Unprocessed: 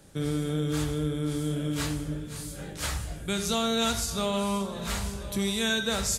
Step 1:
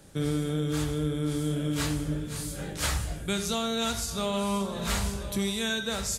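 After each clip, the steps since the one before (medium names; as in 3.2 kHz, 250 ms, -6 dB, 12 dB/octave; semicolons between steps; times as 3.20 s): gain riding within 3 dB 0.5 s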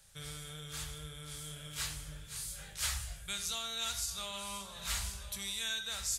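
amplifier tone stack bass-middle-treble 10-0-10; trim -2.5 dB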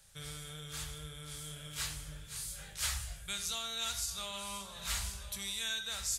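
no audible change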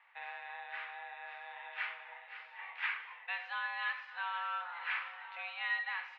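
mistuned SSB +340 Hz 340–2200 Hz; trim +8.5 dB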